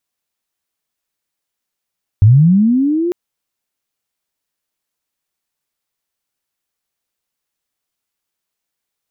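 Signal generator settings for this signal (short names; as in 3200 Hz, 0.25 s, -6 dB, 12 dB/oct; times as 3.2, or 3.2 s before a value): chirp linear 95 Hz -> 360 Hz -3 dBFS -> -14 dBFS 0.90 s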